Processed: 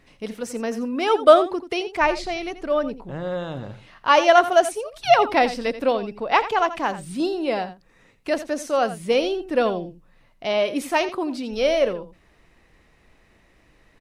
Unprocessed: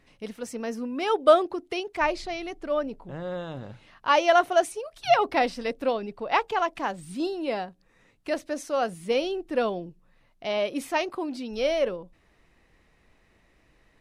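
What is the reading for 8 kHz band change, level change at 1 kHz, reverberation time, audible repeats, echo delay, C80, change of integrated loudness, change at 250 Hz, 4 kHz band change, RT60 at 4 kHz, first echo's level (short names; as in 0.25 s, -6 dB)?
+5.0 dB, +5.0 dB, none, 1, 85 ms, none, +5.0 dB, +5.0 dB, +5.0 dB, none, -13.5 dB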